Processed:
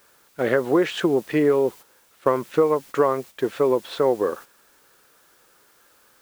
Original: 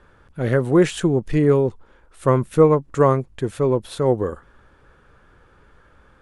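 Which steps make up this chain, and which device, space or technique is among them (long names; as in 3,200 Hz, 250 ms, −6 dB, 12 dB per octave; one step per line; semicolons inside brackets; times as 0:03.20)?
baby monitor (band-pass filter 350–3,800 Hz; downward compressor 6 to 1, threshold −20 dBFS, peak gain reduction 10.5 dB; white noise bed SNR 26 dB; noise gate −42 dBFS, range −10 dB)
level +5 dB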